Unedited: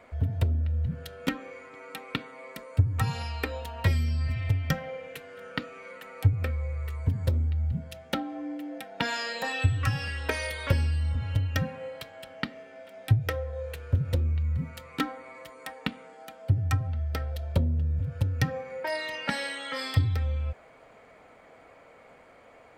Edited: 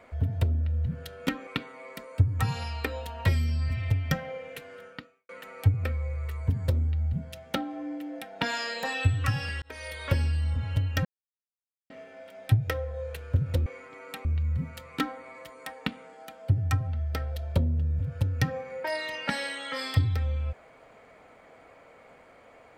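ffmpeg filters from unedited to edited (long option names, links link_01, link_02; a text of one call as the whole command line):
ffmpeg -i in.wav -filter_complex "[0:a]asplit=8[link_01][link_02][link_03][link_04][link_05][link_06][link_07][link_08];[link_01]atrim=end=1.472[link_09];[link_02]atrim=start=2.058:end=5.88,asetpts=PTS-STARTPTS,afade=type=out:start_time=3.282:duration=0.54:curve=qua[link_10];[link_03]atrim=start=5.88:end=10.21,asetpts=PTS-STARTPTS,afade=type=in:duration=0.004:curve=hsin,afade=type=out:start_time=4.326:duration=0.004:curve=hsin[link_11];[link_04]atrim=start=10.21:end=11.64,asetpts=PTS-STARTPTS,afade=type=in:duration=0.74:curve=qsin,afade=type=out:start_time=1.426:duration=0.004:curve=hsin[link_12];[link_05]atrim=start=11.64:end=12.49,asetpts=PTS-STARTPTS,volume=0[link_13];[link_06]atrim=start=12.49:end=14.252,asetpts=PTS-STARTPTS,afade=type=in:duration=0.004:curve=hsin[link_14];[link_07]atrim=start=1.468:end=2.062[link_15];[link_08]atrim=start=14.248[link_16];[link_10][link_11][link_12][link_13][link_14]concat=n=5:v=0:a=1[link_17];[link_09][link_17]acrossfade=duration=0.004:curve1=hsin:curve2=hsin[link_18];[link_18][link_15]acrossfade=duration=0.004:curve1=hsin:curve2=hsin[link_19];[link_19][link_16]acrossfade=duration=0.004:curve1=hsin:curve2=hsin" out.wav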